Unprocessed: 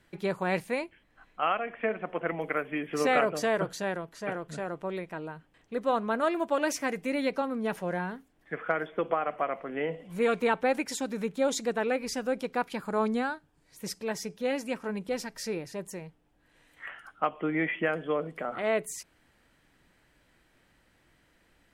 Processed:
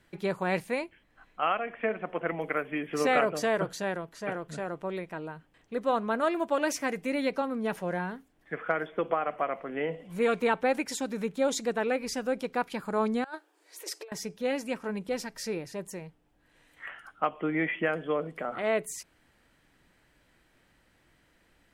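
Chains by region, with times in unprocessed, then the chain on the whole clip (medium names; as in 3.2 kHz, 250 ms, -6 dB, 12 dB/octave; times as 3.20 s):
13.24–14.12 s: compressor with a negative ratio -38 dBFS, ratio -0.5 + brick-wall FIR high-pass 300 Hz
whole clip: none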